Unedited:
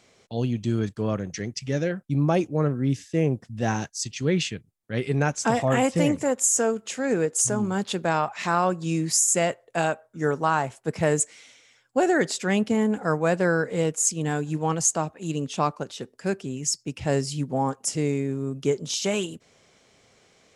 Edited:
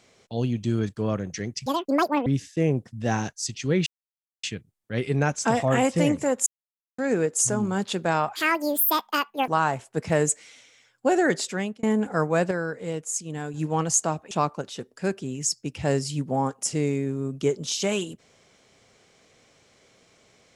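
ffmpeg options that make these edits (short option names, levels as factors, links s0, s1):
-filter_complex "[0:a]asplit=12[s0][s1][s2][s3][s4][s5][s6][s7][s8][s9][s10][s11];[s0]atrim=end=1.664[s12];[s1]atrim=start=1.66:end=2.83,asetpts=PTS-STARTPTS,asetrate=85554,aresample=44100,atrim=end_sample=26596,asetpts=PTS-STARTPTS[s13];[s2]atrim=start=2.826:end=4.43,asetpts=PTS-STARTPTS,afade=t=out:st=1.6:d=0.004:c=hsin,apad=pad_dur=0.57[s14];[s3]atrim=start=4.43:end=6.46,asetpts=PTS-STARTPTS,afade=t=in:d=0.004:c=hsin,afade=t=out:st=2.026:d=0.004:c=hsin[s15];[s4]atrim=start=6.46:end=6.98,asetpts=PTS-STARTPTS,volume=0[s16];[s5]atrim=start=6.98:end=8.354,asetpts=PTS-STARTPTS,afade=t=in:d=0.004:c=hsin[s17];[s6]atrim=start=8.35:end=10.39,asetpts=PTS-STARTPTS,asetrate=79821,aresample=44100[s18];[s7]atrim=start=10.386:end=12.74,asetpts=PTS-STARTPTS,afade=t=out:st=1.954:d=0.4[s19];[s8]atrim=start=12.74:end=13.422,asetpts=PTS-STARTPTS,afade=t=in:d=0.004:c=hsin[s20];[s9]atrim=start=13.418:end=14.452,asetpts=PTS-STARTPTS,volume=0.473[s21];[s10]atrim=start=14.448:end=15.222[s22];[s11]atrim=start=15.528[s23];[s12][s13]acrossfade=d=0.004:c1=hsin:c2=hsin[s24];[s14][s15][s16][s17]concat=n=4:v=0:a=1[s25];[s24][s25]acrossfade=d=0.004:c1=hsin:c2=hsin[s26];[s26][s18]acrossfade=d=0.004:c1=hsin:c2=hsin[s27];[s19][s20]concat=n=2:v=0:a=1[s28];[s27][s28]acrossfade=d=0.004:c1=hsin:c2=hsin[s29];[s29][s21]acrossfade=d=0.004:c1=hsin:c2=hsin[s30];[s30][s22]acrossfade=d=0.004:c1=hsin:c2=hsin[s31];[s31][s23]acrossfade=d=0.004:c1=hsin:c2=hsin"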